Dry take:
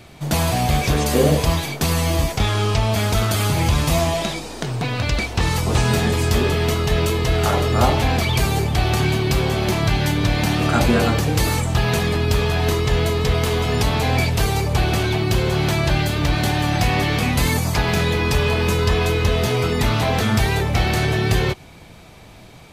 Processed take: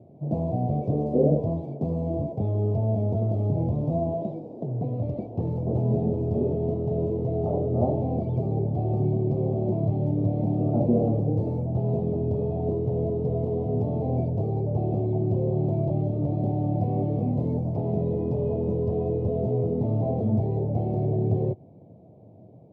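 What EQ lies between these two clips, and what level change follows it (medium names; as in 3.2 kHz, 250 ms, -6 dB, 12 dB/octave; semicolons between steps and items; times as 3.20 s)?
elliptic band-pass 100–640 Hz, stop band 40 dB; -3.5 dB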